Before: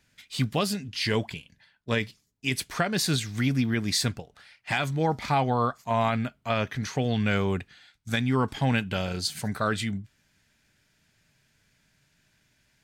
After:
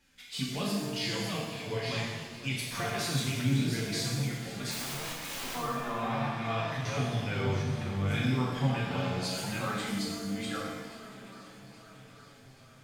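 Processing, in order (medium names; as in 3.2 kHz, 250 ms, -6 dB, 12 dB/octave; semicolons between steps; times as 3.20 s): chunks repeated in reverse 482 ms, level -5 dB; on a send: shuffle delay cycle 829 ms, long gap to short 1.5:1, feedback 59%, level -24 dB; on the sum: compression 2.5:1, threshold -36 dBFS, peak gain reduction 12 dB; flange 0.19 Hz, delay 3.6 ms, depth 5.3 ms, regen 0%; 4.71–5.55 s: integer overflow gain 38.5 dB; pitch-shifted reverb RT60 1.2 s, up +7 st, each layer -8 dB, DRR -4 dB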